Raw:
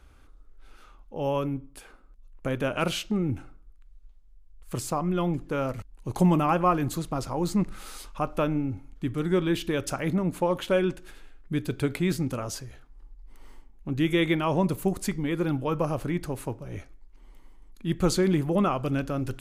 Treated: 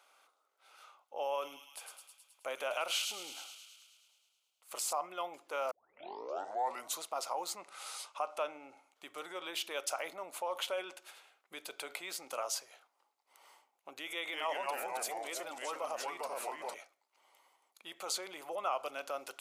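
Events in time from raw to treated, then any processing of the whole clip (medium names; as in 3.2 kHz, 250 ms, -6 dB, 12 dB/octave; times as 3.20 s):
1.17–4.93 s: feedback echo behind a high-pass 106 ms, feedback 68%, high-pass 3.6 kHz, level -3 dB
5.71 s: tape start 1.31 s
7.61–8.90 s: low-pass 11 kHz 24 dB/octave
14.13–16.74 s: ever faster or slower copies 197 ms, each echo -2 st, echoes 3
whole clip: peaking EQ 1.7 kHz -9 dB 0.24 oct; peak limiter -23 dBFS; Chebyshev high-pass 640 Hz, order 3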